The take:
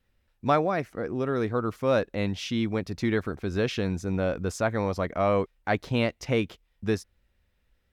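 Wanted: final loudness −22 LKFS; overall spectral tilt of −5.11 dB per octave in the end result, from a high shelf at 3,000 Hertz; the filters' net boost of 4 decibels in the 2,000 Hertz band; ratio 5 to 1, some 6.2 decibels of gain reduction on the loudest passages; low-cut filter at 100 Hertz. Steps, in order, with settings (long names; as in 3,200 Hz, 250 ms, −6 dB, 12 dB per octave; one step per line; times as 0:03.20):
high-pass filter 100 Hz
parametric band 2,000 Hz +8 dB
high-shelf EQ 3,000 Hz −8 dB
downward compressor 5 to 1, threshold −25 dBFS
level +9.5 dB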